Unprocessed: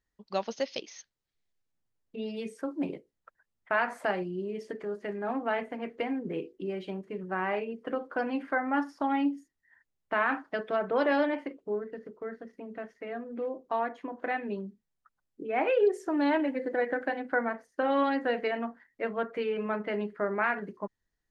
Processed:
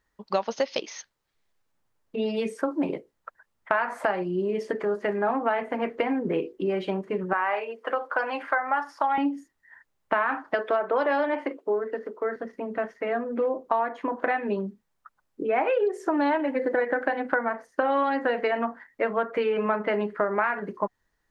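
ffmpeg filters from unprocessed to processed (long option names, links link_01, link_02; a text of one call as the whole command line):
ffmpeg -i in.wav -filter_complex "[0:a]asettb=1/sr,asplit=3[link_01][link_02][link_03];[link_01]atrim=end=7.334[link_04];[link_02]atrim=start=7.33:end=9.18,asetpts=PTS-STARTPTS,afade=type=in:duration=0.004:curve=qsin,afade=type=out:start_time=1.846:duration=0.004:curve=qsin,highpass=630[link_05];[link_03]atrim=start=9.176[link_06];[link_04][link_05]acrossfade=duration=0.004:curve1=hsin:curve2=qsin[link_07];[link_07][link_06]acrossfade=duration=0.004:curve1=qsin:curve2=hsin,asettb=1/sr,asplit=3[link_08][link_09][link_10];[link_08]atrim=end=10.544[link_11];[link_09]atrim=start=10.54:end=12.36,asetpts=PTS-STARTPTS,afade=type=in:duration=0.004:curve=qsin,afade=type=out:start_time=1.816:duration=0.004:curve=qsin,highpass=frequency=250:width=0.5412,highpass=frequency=250:width=1.3066[link_12];[link_10]atrim=start=12.356[link_13];[link_11][link_12]acrossfade=duration=0.004:curve1=hsin:curve2=qsin[link_14];[link_14][link_13]acrossfade=duration=0.004:curve1=qsin:curve2=hsin,equalizer=frequency=960:width=0.64:gain=8.5,bandreject=frequency=730:width=18,acompressor=threshold=-28dB:ratio=6,volume=6.5dB" out.wav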